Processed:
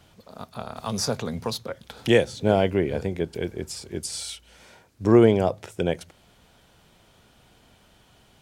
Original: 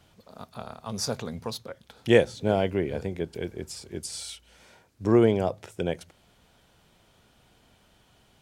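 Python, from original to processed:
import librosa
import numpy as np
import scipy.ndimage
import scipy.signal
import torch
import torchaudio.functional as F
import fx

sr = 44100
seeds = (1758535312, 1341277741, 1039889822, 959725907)

y = fx.band_squash(x, sr, depth_pct=40, at=(0.76, 2.33))
y = y * librosa.db_to_amplitude(4.0)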